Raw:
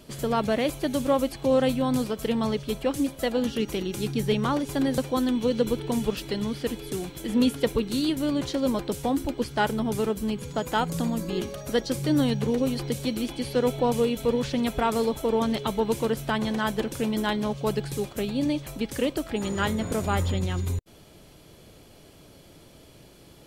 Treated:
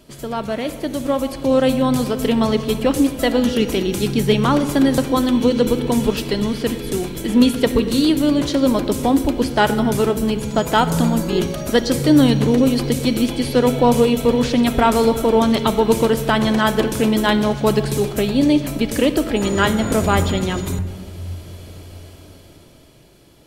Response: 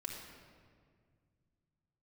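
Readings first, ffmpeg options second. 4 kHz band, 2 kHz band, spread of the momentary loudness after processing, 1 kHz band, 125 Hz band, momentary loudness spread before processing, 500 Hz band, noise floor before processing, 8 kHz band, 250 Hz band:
+9.0 dB, +9.0 dB, 8 LU, +9.0 dB, +8.5 dB, 6 LU, +8.5 dB, -52 dBFS, +9.0 dB, +9.5 dB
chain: -filter_complex "[0:a]dynaudnorm=f=140:g=21:m=11dB,asplit=2[a][b];[1:a]atrim=start_sample=2205[c];[b][c]afir=irnorm=-1:irlink=0,volume=-4dB[d];[a][d]amix=inputs=2:normalize=0,volume=-2.5dB"

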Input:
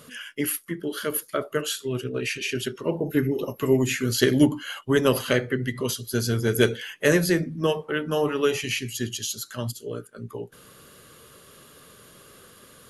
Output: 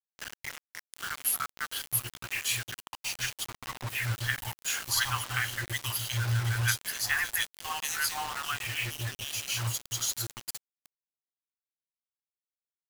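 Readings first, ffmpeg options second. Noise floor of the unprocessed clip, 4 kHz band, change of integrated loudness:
-51 dBFS, -2.0 dB, -6.0 dB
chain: -filter_complex "[0:a]acrossover=split=880|2800[a][b][c];[b]adelay=60[d];[c]adelay=790[e];[a][d][e]amix=inputs=3:normalize=0,afftfilt=real='re*(1-between(b*sr/4096,120,710))':imag='im*(1-between(b*sr/4096,120,710))':win_size=4096:overlap=0.75,acrusher=bits=5:mix=0:aa=0.000001"

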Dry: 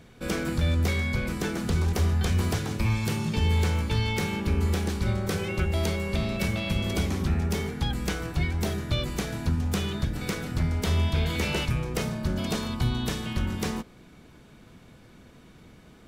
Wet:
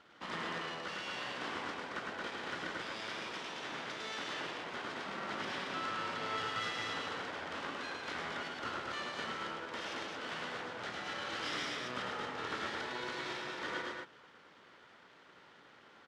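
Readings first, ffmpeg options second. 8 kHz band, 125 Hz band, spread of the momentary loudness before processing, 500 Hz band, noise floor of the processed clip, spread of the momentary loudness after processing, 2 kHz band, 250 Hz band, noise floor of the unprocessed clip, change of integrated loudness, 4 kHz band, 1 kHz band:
-14.0 dB, -30.0 dB, 5 LU, -10.5 dB, -60 dBFS, 18 LU, -4.5 dB, -18.0 dB, -52 dBFS, -12.0 dB, -6.5 dB, -2.5 dB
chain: -filter_complex "[0:a]alimiter=limit=-22.5dB:level=0:latency=1,asplit=3[a][b][c];[a]bandpass=f=730:t=q:w=8,volume=0dB[d];[b]bandpass=f=1.09k:t=q:w=8,volume=-6dB[e];[c]bandpass=f=2.44k:t=q:w=8,volume=-9dB[f];[d][e][f]amix=inputs=3:normalize=0,aeval=exprs='abs(val(0))':c=same,highpass=190,lowpass=6.6k,aecho=1:1:105|224.5:0.708|0.708,volume=11dB"

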